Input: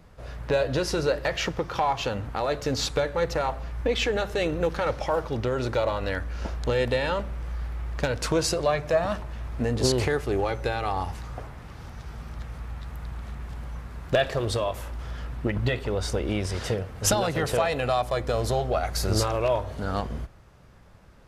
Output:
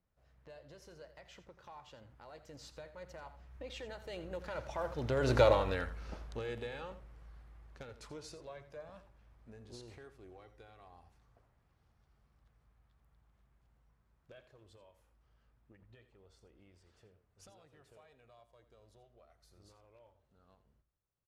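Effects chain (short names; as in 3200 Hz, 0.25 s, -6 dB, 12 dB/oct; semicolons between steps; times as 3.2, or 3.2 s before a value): Doppler pass-by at 5.42, 22 m/s, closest 3.4 m; on a send: echo 84 ms -13.5 dB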